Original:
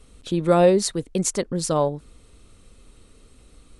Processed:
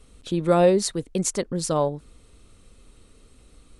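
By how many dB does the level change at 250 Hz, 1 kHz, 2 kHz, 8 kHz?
-1.5 dB, -1.5 dB, -1.5 dB, -1.5 dB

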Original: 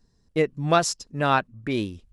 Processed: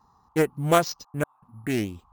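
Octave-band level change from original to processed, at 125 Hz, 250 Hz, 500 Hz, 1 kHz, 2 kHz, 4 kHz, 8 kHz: -0.5 dB, 0.0 dB, -0.5 dB, -4.0 dB, -4.0 dB, -4.0 dB, -4.5 dB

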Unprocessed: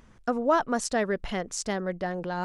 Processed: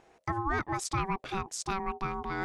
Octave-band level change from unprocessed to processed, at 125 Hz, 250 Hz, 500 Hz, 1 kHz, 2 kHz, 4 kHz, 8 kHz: +1.5 dB, -7.5 dB, -11.5 dB, -2.5 dB, -2.5 dB, -4.0 dB, -4.0 dB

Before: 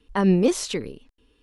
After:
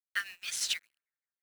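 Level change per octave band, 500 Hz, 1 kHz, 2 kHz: under -40 dB, -18.5 dB, 0.0 dB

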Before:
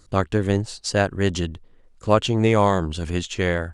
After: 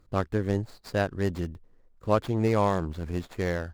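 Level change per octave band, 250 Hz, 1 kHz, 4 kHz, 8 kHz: -6.0 dB, -6.5 dB, -14.0 dB, -15.5 dB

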